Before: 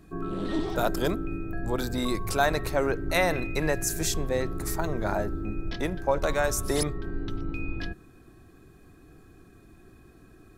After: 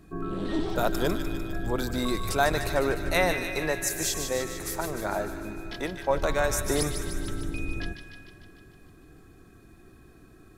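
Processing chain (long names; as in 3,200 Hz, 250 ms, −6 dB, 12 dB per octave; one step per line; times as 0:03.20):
0:03.32–0:06.10: low-shelf EQ 210 Hz −9.5 dB
delay with a high-pass on its return 150 ms, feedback 64%, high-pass 1,500 Hz, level −6.5 dB
convolution reverb RT60 3.1 s, pre-delay 128 ms, DRR 15.5 dB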